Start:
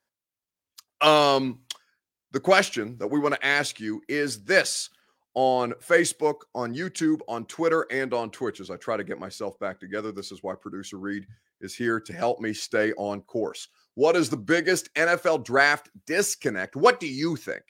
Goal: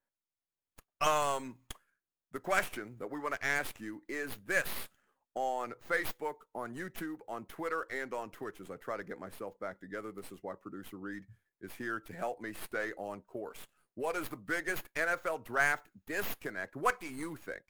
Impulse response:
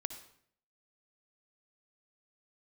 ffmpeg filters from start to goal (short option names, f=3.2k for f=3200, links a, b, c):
-filter_complex "[0:a]acrossover=split=730|2700[a][b][c];[a]acompressor=threshold=-33dB:ratio=6[d];[c]aeval=exprs='abs(val(0))':c=same[e];[d][b][e]amix=inputs=3:normalize=0,volume=-7.5dB"